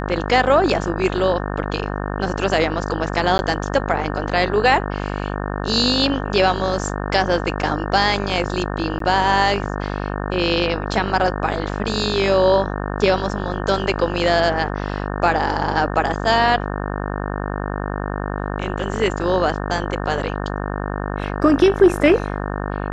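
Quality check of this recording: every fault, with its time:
buzz 50 Hz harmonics 36 -25 dBFS
3.38–3.39 gap 11 ms
8.99–9 gap 13 ms

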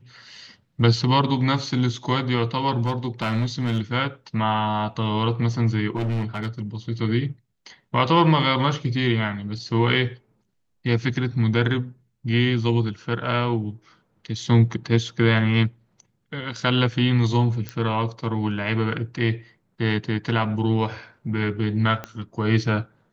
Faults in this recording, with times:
2.83–3.81 clipped -18 dBFS
5.95–6.62 clipped -21.5 dBFS
17.69 pop -15 dBFS
22.04 pop -16 dBFS

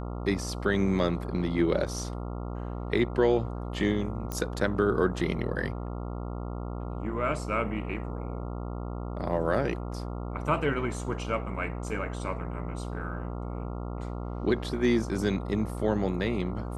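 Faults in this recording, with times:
buzz 60 Hz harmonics 23 -35 dBFS
4.32 pop -18 dBFS

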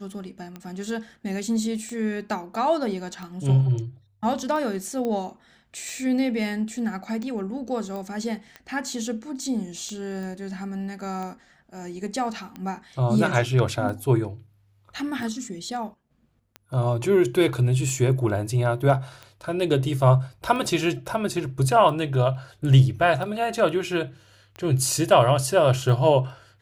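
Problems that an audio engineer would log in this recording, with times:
tick 45 rpm -23 dBFS
5.05 pop -18 dBFS
7.96 pop -23 dBFS
10.23 pop

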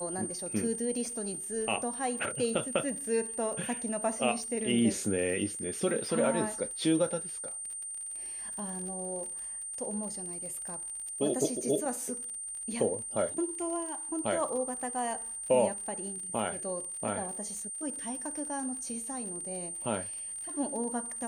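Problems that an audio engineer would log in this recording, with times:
crackle 46/s -39 dBFS
tone 8800 Hz -37 dBFS

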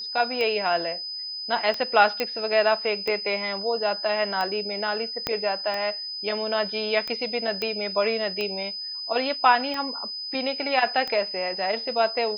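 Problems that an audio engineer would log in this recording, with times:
tick 45 rpm -16 dBFS
tone 5000 Hz -31 dBFS
2.2 pop -11 dBFS
5.27 pop -10 dBFS
7.62 pop -14 dBFS

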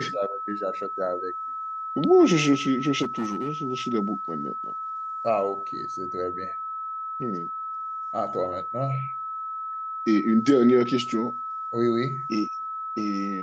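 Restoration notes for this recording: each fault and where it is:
tone 1300 Hz -30 dBFS
3.02–3.49 clipped -23 dBFS

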